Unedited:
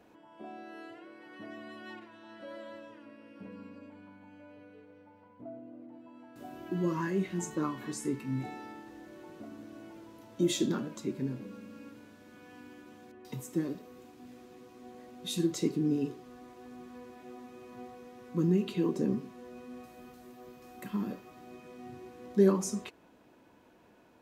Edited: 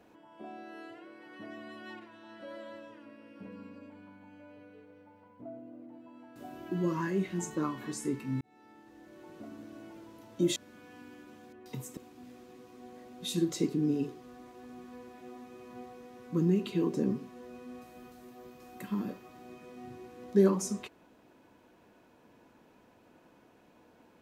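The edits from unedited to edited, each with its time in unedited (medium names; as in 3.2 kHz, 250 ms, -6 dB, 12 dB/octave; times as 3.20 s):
8.41–9.46 s: fade in
10.56–12.15 s: delete
13.56–13.99 s: delete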